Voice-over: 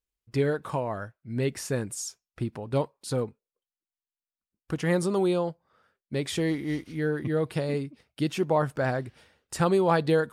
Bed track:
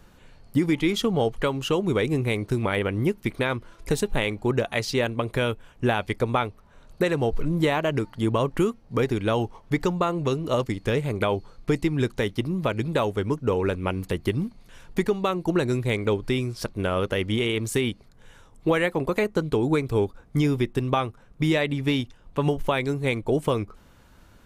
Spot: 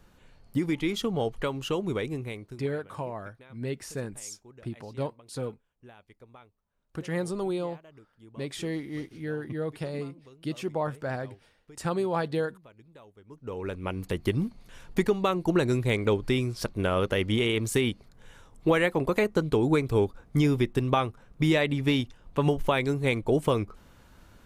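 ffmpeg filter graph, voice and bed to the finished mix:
-filter_complex "[0:a]adelay=2250,volume=0.531[s0];[1:a]volume=12.6,afade=t=out:st=1.82:d=0.86:silence=0.0707946,afade=t=in:st=13.27:d=1.13:silence=0.0421697[s1];[s0][s1]amix=inputs=2:normalize=0"

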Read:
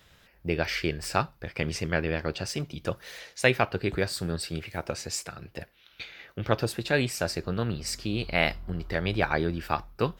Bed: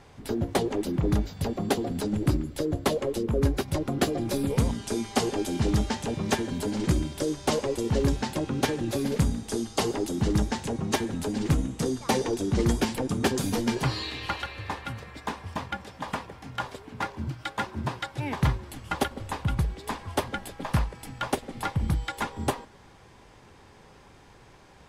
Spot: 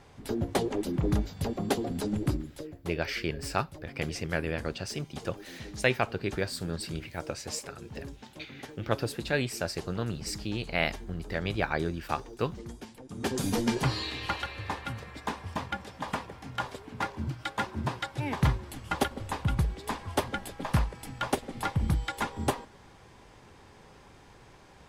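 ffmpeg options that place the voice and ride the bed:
-filter_complex "[0:a]adelay=2400,volume=0.668[s0];[1:a]volume=5.96,afade=t=out:st=2.14:d=0.61:silence=0.149624,afade=t=in:st=13.08:d=0.4:silence=0.125893[s1];[s0][s1]amix=inputs=2:normalize=0"

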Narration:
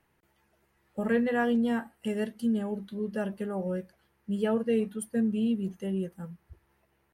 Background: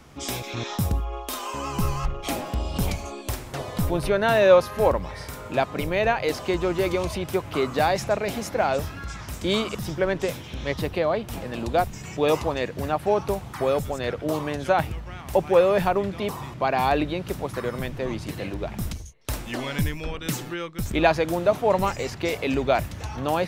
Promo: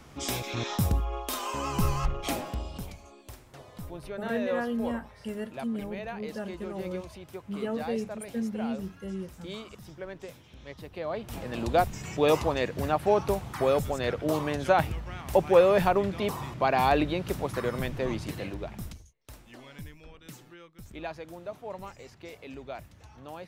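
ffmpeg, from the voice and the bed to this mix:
-filter_complex "[0:a]adelay=3200,volume=0.562[s0];[1:a]volume=4.73,afade=t=out:st=2.2:d=0.67:silence=0.177828,afade=t=in:st=10.9:d=0.77:silence=0.177828,afade=t=out:st=18.09:d=1.07:silence=0.141254[s1];[s0][s1]amix=inputs=2:normalize=0"

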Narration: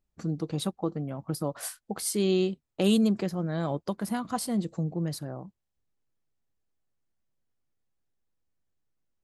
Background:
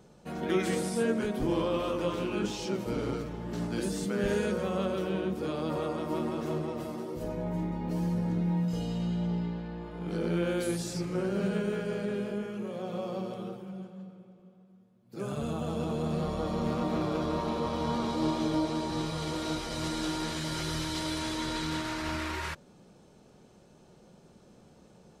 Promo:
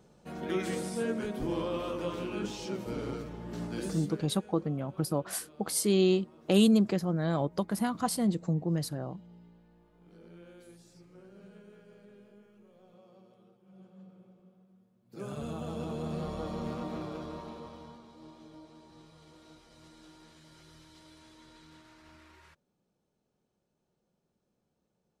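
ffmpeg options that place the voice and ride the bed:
-filter_complex "[0:a]adelay=3700,volume=1.06[s0];[1:a]volume=5.31,afade=t=out:st=3.86:d=0.41:silence=0.112202,afade=t=in:st=13.61:d=0.65:silence=0.11885,afade=t=out:st=16.41:d=1.61:silence=0.11885[s1];[s0][s1]amix=inputs=2:normalize=0"

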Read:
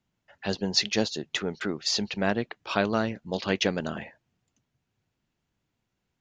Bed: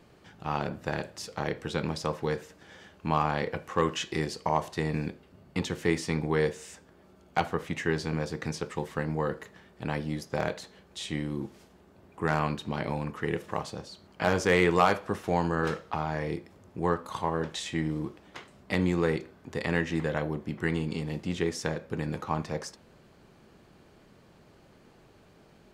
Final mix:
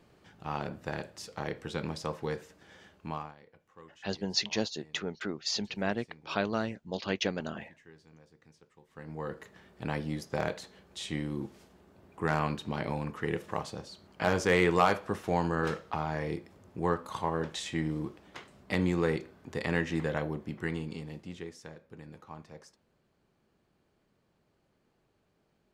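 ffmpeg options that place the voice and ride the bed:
-filter_complex "[0:a]adelay=3600,volume=0.531[s0];[1:a]volume=10.6,afade=t=out:st=2.88:d=0.47:silence=0.0749894,afade=t=in:st=8.87:d=0.78:silence=0.0562341,afade=t=out:st=20.14:d=1.43:silence=0.199526[s1];[s0][s1]amix=inputs=2:normalize=0"

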